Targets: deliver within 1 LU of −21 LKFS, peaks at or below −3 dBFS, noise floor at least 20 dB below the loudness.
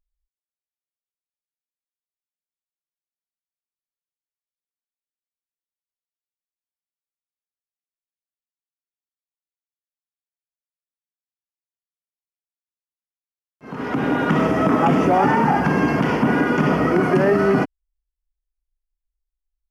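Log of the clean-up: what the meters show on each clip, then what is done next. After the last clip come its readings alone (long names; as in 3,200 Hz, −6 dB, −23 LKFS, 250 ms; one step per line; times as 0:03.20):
integrated loudness −18.0 LKFS; sample peak −5.5 dBFS; target loudness −21.0 LKFS
→ level −3 dB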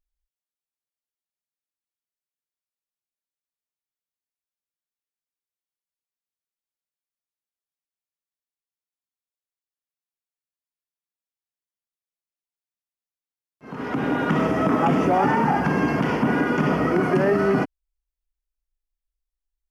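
integrated loudness −21.0 LKFS; sample peak −8.5 dBFS; background noise floor −95 dBFS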